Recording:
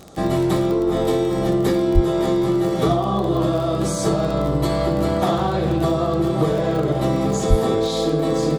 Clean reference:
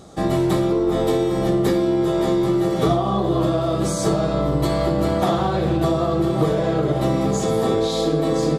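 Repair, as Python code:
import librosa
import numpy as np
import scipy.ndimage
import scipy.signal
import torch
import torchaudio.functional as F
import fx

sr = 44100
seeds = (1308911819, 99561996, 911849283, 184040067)

y = fx.fix_declick_ar(x, sr, threshold=6.5)
y = fx.fix_deplosive(y, sr, at_s=(1.94, 7.49))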